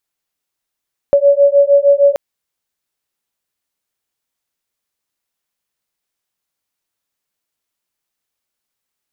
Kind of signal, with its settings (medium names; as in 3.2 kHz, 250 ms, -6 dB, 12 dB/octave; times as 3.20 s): beating tones 562 Hz, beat 6.5 Hz, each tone -10 dBFS 1.03 s